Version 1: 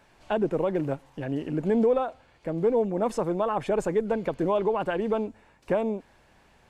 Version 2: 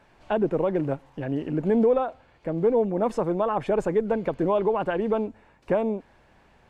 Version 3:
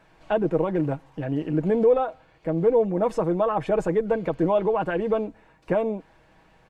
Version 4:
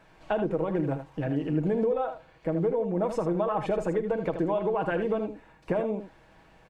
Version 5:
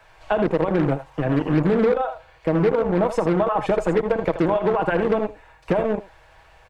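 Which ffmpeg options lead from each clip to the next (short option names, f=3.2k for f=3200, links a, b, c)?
-af "highshelf=f=4.3k:g=-10,volume=2dB"
-af "aecho=1:1:6.3:0.48"
-af "acompressor=threshold=-24dB:ratio=6,aecho=1:1:46|79:0.141|0.355"
-filter_complex "[0:a]equalizer=f=84:w=1.5:g=4,acrossover=split=110|450|3800[a][b][c][d];[b]acrusher=bits=4:mix=0:aa=0.5[e];[a][e][c][d]amix=inputs=4:normalize=0,volume=7dB"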